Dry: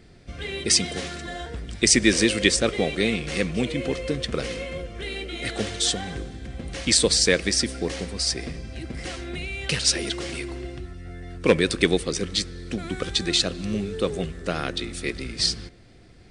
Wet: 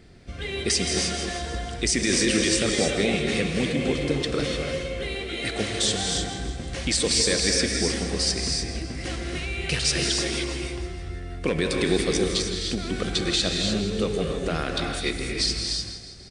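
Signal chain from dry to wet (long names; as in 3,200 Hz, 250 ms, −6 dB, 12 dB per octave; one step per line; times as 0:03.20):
on a send: repeating echo 162 ms, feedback 56%, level −13.5 dB
on the sum: brickwall limiter −13 dBFS, peak gain reduction 11.5 dB
reverb whose tail is shaped and stops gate 330 ms rising, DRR 2 dB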